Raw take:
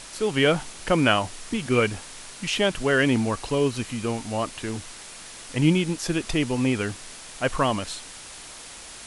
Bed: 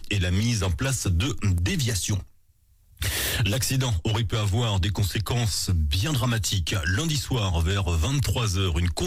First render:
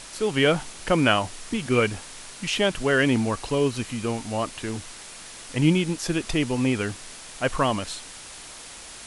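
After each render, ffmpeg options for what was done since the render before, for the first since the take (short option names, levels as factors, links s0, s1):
-af anull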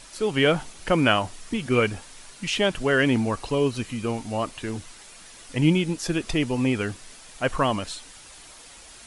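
-af "afftdn=nr=7:nf=-42"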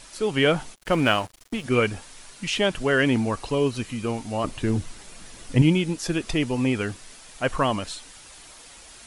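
-filter_complex "[0:a]asplit=3[s0][s1][s2];[s0]afade=t=out:st=0.74:d=0.02[s3];[s1]aeval=exprs='sgn(val(0))*max(abs(val(0))-0.0141,0)':c=same,afade=t=in:st=0.74:d=0.02,afade=t=out:st=1.63:d=0.02[s4];[s2]afade=t=in:st=1.63:d=0.02[s5];[s3][s4][s5]amix=inputs=3:normalize=0,asettb=1/sr,asplit=3[s6][s7][s8];[s6]atrim=end=4.444[s9];[s7]atrim=start=4.44:end=5.62,asetpts=PTS-STARTPTS,afade=t=in:d=0.004:c=qsin,afade=t=out:st=1.176:d=0.004:c=qsin,lowshelf=f=420:g=10.5[s10];[s8]atrim=start=5.616[s11];[s9][s10]acrossfade=d=0.004:c1=hsin:c2=qsin[s12];[s12][s11]acrossfade=d=0.004:c1=qsin:c2=hsin"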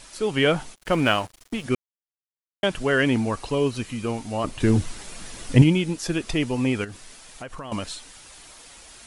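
-filter_complex "[0:a]asettb=1/sr,asplit=3[s0][s1][s2];[s0]atrim=end=4.604[s3];[s1]atrim=start=4.6:end=5.64,asetpts=PTS-STARTPTS,afade=t=in:d=0.004:c=qsin,afade=t=out:st=1.036:d=0.004:c=qsin,acontrast=25[s4];[s2]atrim=start=5.636[s5];[s3][s4]acrossfade=d=0.004:c1=hsin:c2=qsin[s6];[s6][s5]acrossfade=d=0.004:c1=qsin:c2=hsin,asettb=1/sr,asplit=3[s7][s8][s9];[s7]atrim=end=6.844[s10];[s8]atrim=start=6.84:end=7.72,asetpts=PTS-STARTPTS,afade=t=in:d=0.004:c=qsin,afade=t=out:st=0.876:d=0.004:c=qsin,acompressor=threshold=0.0251:ratio=10:attack=3.2:release=140:knee=1:detection=peak[s11];[s9]atrim=start=7.716[s12];[s10][s11]acrossfade=d=0.004:c1=hsin:c2=qsin[s13];[s13][s12]acrossfade=d=0.004:c1=qsin:c2=hsin,asplit=3[s14][s15][s16];[s14]atrim=end=1.75,asetpts=PTS-STARTPTS,afade=t=out:st=1.746:d=0.004:c=hsin[s17];[s15]atrim=start=1.75:end=2.63,asetpts=PTS-STARTPTS,volume=0[s18];[s16]atrim=start=2.63,asetpts=PTS-STARTPTS,afade=t=in:d=0.004:c=hsin[s19];[s17][s18][s19]concat=n=3:v=0:a=1"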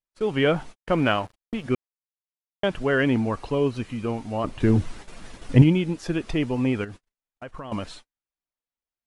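-af "agate=range=0.00398:threshold=0.0141:ratio=16:detection=peak,lowpass=f=2000:p=1"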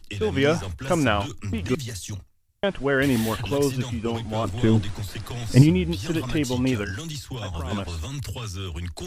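-filter_complex "[1:a]volume=0.398[s0];[0:a][s0]amix=inputs=2:normalize=0"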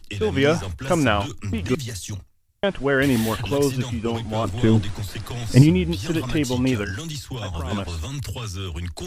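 -af "volume=1.26,alimiter=limit=0.794:level=0:latency=1"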